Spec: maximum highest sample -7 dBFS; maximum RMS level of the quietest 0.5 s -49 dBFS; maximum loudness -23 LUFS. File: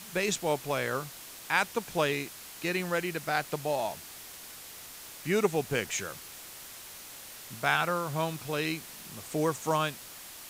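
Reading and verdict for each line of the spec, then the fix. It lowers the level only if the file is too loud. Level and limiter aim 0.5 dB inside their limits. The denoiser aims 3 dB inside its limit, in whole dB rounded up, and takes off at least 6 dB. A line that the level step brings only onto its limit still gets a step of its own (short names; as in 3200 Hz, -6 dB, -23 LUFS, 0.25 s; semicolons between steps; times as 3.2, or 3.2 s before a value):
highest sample -11.0 dBFS: OK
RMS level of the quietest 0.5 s -46 dBFS: fail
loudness -31.0 LUFS: OK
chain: denoiser 6 dB, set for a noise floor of -46 dBFS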